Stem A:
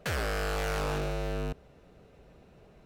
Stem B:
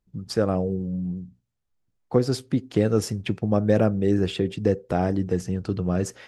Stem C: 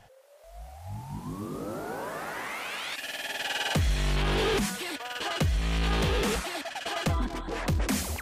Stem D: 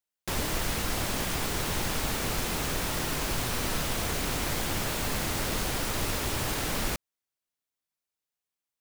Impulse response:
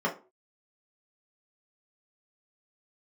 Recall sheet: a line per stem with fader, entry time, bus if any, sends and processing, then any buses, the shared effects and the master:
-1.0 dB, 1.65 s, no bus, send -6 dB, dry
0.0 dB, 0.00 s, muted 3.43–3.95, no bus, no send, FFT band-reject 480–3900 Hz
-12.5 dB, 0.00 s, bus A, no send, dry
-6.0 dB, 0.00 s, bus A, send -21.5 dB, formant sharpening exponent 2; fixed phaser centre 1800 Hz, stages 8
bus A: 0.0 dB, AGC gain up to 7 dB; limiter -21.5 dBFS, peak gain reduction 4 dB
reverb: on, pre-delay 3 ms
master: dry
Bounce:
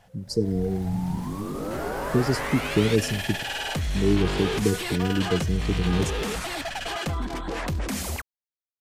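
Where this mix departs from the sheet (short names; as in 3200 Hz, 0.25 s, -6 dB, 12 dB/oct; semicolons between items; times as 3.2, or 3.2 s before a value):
stem A -1.0 dB -> -9.5 dB; stem C -12.5 dB -> -2.0 dB; stem D -6.0 dB -> -17.5 dB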